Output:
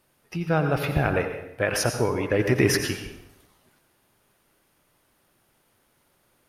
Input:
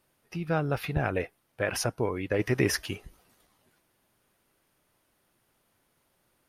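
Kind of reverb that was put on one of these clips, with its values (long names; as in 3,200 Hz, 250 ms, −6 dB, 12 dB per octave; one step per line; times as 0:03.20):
dense smooth reverb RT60 0.82 s, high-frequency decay 0.8×, pre-delay 75 ms, DRR 5.5 dB
level +4.5 dB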